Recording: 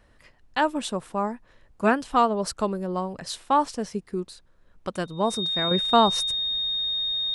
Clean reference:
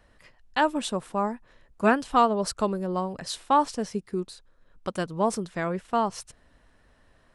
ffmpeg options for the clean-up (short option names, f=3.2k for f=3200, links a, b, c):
-af "bandreject=f=3.7k:w=30,agate=range=-21dB:threshold=-48dB,asetnsamples=n=441:p=0,asendcmd='5.71 volume volume -6.5dB',volume=0dB"